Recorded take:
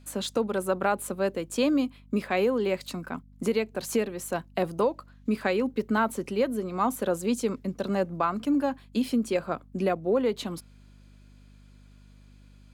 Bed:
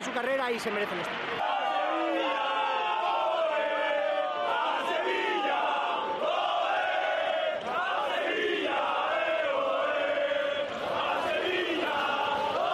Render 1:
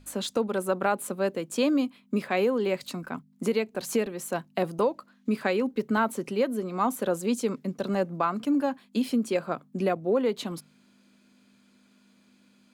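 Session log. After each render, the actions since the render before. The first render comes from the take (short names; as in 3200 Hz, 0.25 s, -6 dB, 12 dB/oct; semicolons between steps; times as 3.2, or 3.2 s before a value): de-hum 50 Hz, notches 3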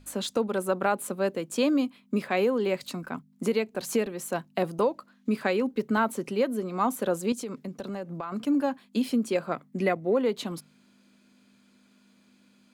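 7.32–8.32 compressor 4:1, threshold -32 dBFS; 9.52–10.16 bell 2000 Hz +12 dB 0.24 oct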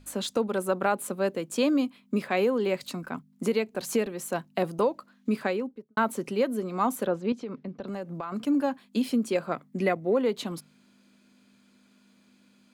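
5.33–5.97 studio fade out; 7.06–7.88 air absorption 230 m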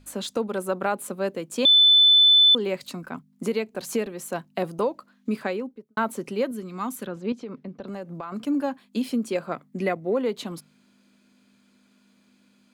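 1.65–2.55 bleep 3510 Hz -12 dBFS; 6.51–7.17 bell 620 Hz -10.5 dB 1.5 oct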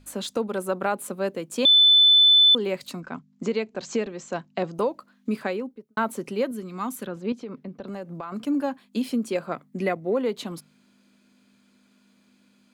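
3–4.75 steep low-pass 7500 Hz 72 dB/oct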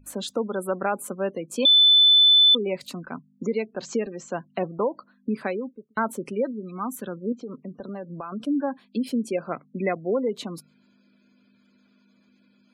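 spectral gate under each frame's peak -25 dB strong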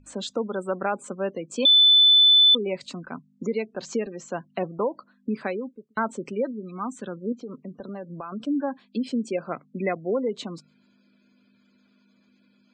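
elliptic low-pass 8000 Hz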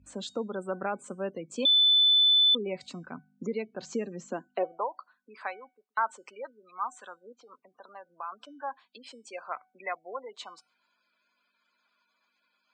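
high-pass sweep 63 Hz -> 950 Hz, 3.78–4.91; resonator 750 Hz, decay 0.38 s, mix 50%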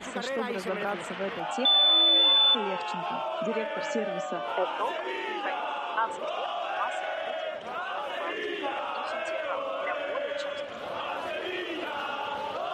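add bed -4.5 dB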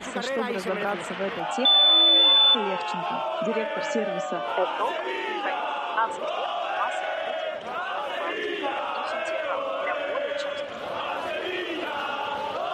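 gain +3.5 dB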